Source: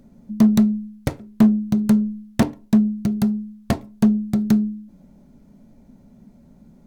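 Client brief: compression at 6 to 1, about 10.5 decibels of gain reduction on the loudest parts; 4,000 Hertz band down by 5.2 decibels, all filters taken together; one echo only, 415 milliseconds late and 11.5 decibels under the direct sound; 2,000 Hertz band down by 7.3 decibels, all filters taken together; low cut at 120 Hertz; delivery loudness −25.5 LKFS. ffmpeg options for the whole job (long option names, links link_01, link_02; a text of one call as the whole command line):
ffmpeg -i in.wav -af "highpass=120,equalizer=frequency=2000:width_type=o:gain=-8.5,equalizer=frequency=4000:width_type=o:gain=-4,acompressor=threshold=-22dB:ratio=6,aecho=1:1:415:0.266,volume=2.5dB" out.wav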